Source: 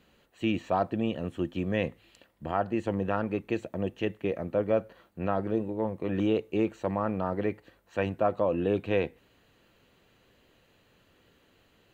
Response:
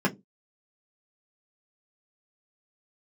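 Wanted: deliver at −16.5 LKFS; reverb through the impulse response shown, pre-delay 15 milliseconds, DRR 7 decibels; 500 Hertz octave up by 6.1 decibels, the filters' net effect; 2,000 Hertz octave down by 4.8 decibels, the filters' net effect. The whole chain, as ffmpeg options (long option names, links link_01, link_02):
-filter_complex "[0:a]equalizer=frequency=500:width_type=o:gain=7.5,equalizer=frequency=2000:width_type=o:gain=-7,asplit=2[link_01][link_02];[1:a]atrim=start_sample=2205,adelay=15[link_03];[link_02][link_03]afir=irnorm=-1:irlink=0,volume=-19dB[link_04];[link_01][link_04]amix=inputs=2:normalize=0,volume=7.5dB"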